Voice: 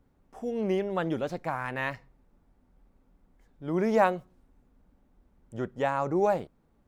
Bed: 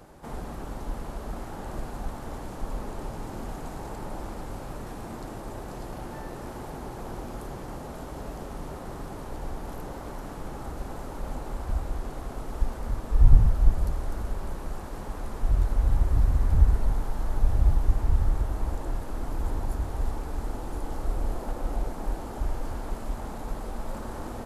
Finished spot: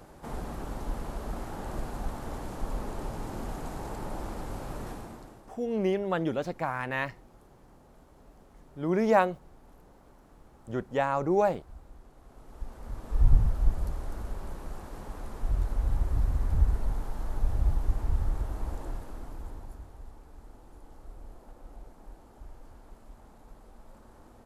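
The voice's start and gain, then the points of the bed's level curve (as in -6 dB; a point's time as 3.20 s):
5.15 s, +0.5 dB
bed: 4.90 s -0.5 dB
5.58 s -19.5 dB
12.15 s -19.5 dB
13.18 s -5 dB
18.85 s -5 dB
20.03 s -18 dB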